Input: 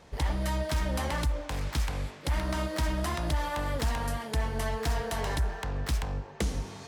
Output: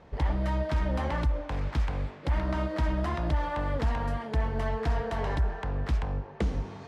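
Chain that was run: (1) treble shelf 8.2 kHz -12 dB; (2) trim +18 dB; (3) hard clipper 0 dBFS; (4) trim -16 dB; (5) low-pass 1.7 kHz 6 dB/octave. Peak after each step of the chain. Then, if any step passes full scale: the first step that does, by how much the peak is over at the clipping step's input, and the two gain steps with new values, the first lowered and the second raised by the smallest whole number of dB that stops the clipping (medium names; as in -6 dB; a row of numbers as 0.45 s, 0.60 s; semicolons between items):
-20.5 dBFS, -2.5 dBFS, -2.5 dBFS, -18.5 dBFS, -18.5 dBFS; nothing clips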